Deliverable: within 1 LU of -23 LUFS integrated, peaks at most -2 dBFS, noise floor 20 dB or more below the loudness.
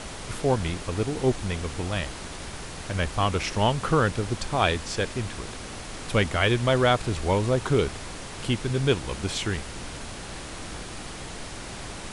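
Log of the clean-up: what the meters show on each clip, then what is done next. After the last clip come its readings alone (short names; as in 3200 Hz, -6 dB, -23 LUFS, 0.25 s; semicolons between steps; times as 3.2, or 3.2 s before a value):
noise floor -38 dBFS; noise floor target -48 dBFS; loudness -27.5 LUFS; peak -7.0 dBFS; loudness target -23.0 LUFS
-> noise print and reduce 10 dB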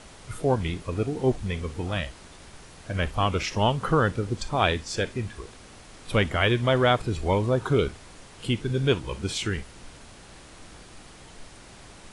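noise floor -48 dBFS; loudness -26.0 LUFS; peak -7.0 dBFS; loudness target -23.0 LUFS
-> gain +3 dB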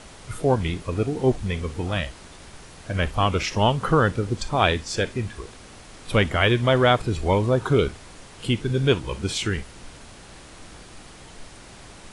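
loudness -23.0 LUFS; peak -4.0 dBFS; noise floor -45 dBFS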